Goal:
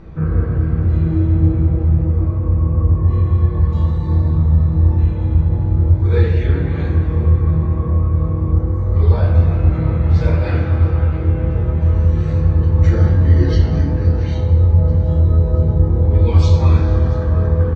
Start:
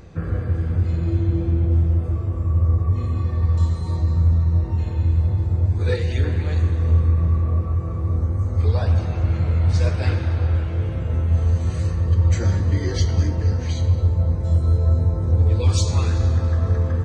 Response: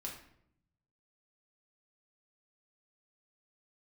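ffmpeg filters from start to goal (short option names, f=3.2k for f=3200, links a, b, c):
-filter_complex "[0:a]lowpass=f=3k:p=1,aemphasis=mode=reproduction:type=50fm,aecho=1:1:652|1304|1956|2608|3260:0.1|0.057|0.0325|0.0185|0.0106[a];[1:a]atrim=start_sample=2205[b];[a][b]afir=irnorm=-1:irlink=0,asetrate=42336,aresample=44100,volume=7dB"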